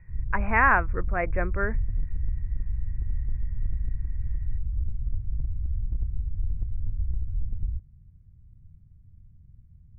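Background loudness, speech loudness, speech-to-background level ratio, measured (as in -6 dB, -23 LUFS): -33.0 LUFS, -25.5 LUFS, 7.5 dB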